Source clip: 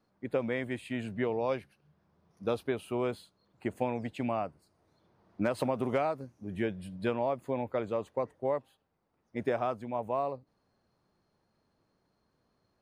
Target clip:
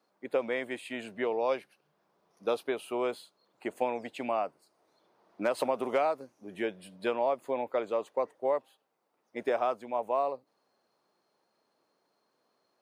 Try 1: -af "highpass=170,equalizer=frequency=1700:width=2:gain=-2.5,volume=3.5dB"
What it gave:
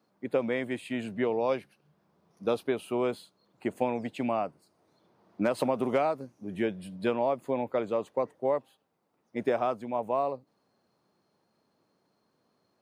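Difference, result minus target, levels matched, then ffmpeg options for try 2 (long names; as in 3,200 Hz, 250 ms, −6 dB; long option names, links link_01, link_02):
125 Hz band +11.0 dB
-af "highpass=400,equalizer=frequency=1700:width=2:gain=-2.5,volume=3.5dB"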